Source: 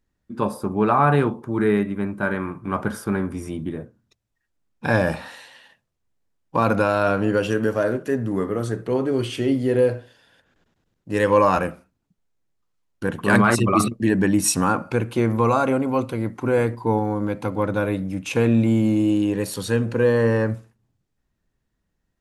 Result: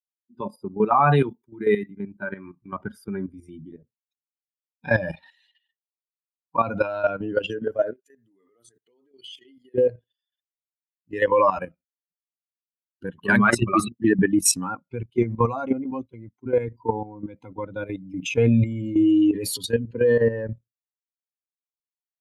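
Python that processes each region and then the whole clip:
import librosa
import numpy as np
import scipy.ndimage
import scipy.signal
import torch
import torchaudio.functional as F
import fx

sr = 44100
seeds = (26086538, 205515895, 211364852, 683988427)

y = fx.chain(x, sr, fx.high_shelf(hz=3400.0, db=9.5),
    fx.band_widen(depth_pct=70), at=(0.91, 1.91))
y = fx.chain(y, sr, fx.tilt_eq(slope=3.0),
    fx.level_steps(step_db=19), at=(7.93, 9.75))
y = fx.chain(y, sr, fx.low_shelf(hz=130.0, db=4.5),
    fx.upward_expand(threshold_db=-36.0, expansion=1.5), at=(14.7, 16.67))
y = fx.chain(y, sr, fx.comb(ms=7.1, depth=0.4),
    fx.sustainer(db_per_s=27.0), at=(18.01, 19.66))
y = fx.bin_expand(y, sr, power=2.0)
y = scipy.signal.sosfilt(scipy.signal.butter(2, 120.0, 'highpass', fs=sr, output='sos'), y)
y = fx.level_steps(y, sr, step_db=12)
y = y * librosa.db_to_amplitude(7.5)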